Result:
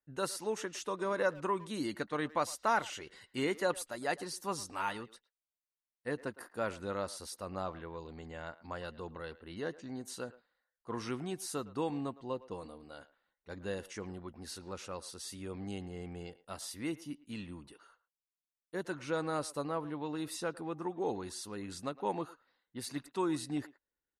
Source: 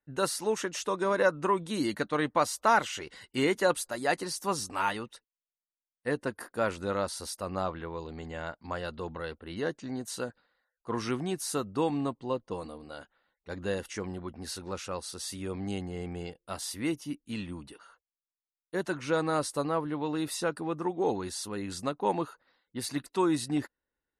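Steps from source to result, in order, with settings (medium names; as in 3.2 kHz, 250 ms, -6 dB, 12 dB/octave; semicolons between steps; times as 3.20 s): speakerphone echo 110 ms, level -18 dB; trim -6.5 dB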